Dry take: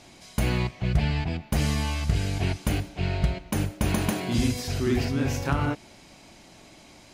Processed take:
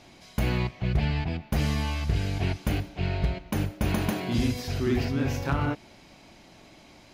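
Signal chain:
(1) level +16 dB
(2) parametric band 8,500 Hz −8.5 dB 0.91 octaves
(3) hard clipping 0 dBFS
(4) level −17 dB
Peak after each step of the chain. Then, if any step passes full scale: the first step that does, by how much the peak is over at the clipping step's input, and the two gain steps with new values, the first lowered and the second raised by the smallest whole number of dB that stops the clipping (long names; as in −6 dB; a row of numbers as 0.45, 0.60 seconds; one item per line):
+4.5, +4.5, 0.0, −17.0 dBFS
step 1, 4.5 dB
step 1 +11 dB, step 4 −12 dB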